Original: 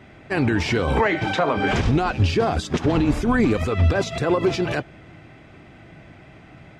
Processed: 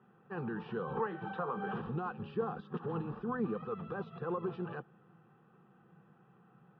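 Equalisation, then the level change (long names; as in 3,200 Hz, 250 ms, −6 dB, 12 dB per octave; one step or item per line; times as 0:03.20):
high-frequency loss of the air 190 metres
loudspeaker in its box 230–2,300 Hz, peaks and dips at 270 Hz −8 dB, 390 Hz −9 dB, 580 Hz −8 dB, 950 Hz −9 dB, 1,500 Hz −5 dB, 2,100 Hz −7 dB
phaser with its sweep stopped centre 430 Hz, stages 8
−5.5 dB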